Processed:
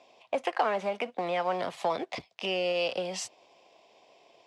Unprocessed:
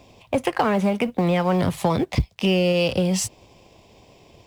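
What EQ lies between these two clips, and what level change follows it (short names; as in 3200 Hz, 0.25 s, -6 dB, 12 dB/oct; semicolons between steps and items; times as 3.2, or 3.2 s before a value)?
BPF 490–5700 Hz; bell 680 Hz +5 dB 0.3 oct; -6.0 dB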